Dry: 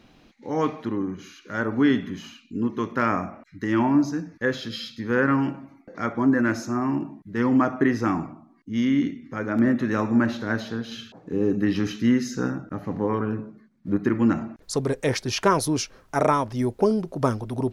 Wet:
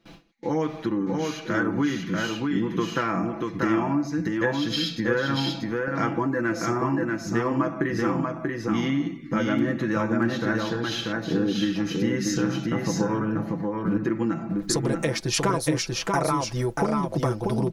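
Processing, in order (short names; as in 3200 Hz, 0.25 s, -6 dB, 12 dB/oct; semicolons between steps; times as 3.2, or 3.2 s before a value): gate with hold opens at -43 dBFS; comb 6 ms, depth 72%; compressor 5:1, threshold -31 dBFS, peak gain reduction 17 dB; echo 0.637 s -3 dB; gain +7.5 dB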